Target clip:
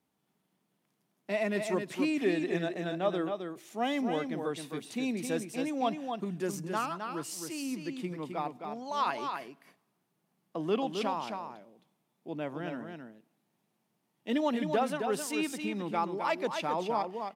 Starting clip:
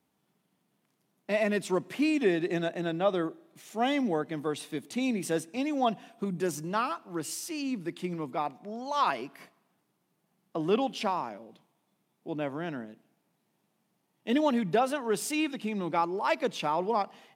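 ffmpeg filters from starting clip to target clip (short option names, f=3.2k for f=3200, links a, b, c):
-af "aecho=1:1:264:0.501,volume=-3.5dB"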